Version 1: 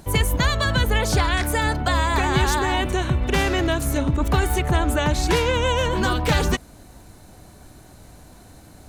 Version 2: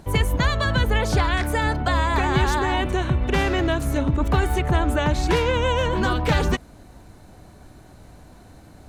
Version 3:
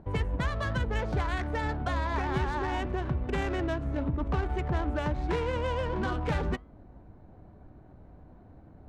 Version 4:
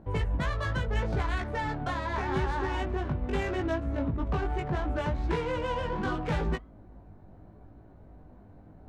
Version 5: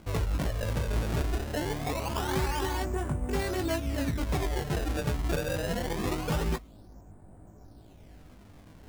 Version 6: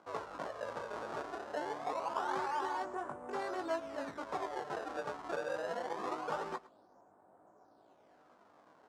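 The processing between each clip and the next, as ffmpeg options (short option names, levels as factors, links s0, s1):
-af "highshelf=f=4800:g=-9.5"
-filter_complex "[0:a]asplit=2[s0][s1];[s1]acompressor=threshold=0.0447:ratio=6,volume=1.26[s2];[s0][s2]amix=inputs=2:normalize=0,flanger=delay=9.5:depth=5.8:regen=-87:speed=1.2:shape=sinusoidal,adynamicsmooth=sensitivity=1.5:basefreq=1100,volume=0.422"
-af "flanger=delay=18:depth=2.4:speed=0.77,volume=1.41"
-af "acrusher=samples=24:mix=1:aa=0.000001:lfo=1:lforange=38.4:lforate=0.24"
-af "highpass=560,lowpass=6300,highshelf=f=1700:t=q:w=1.5:g=-9,aecho=1:1:109:0.1,volume=0.794"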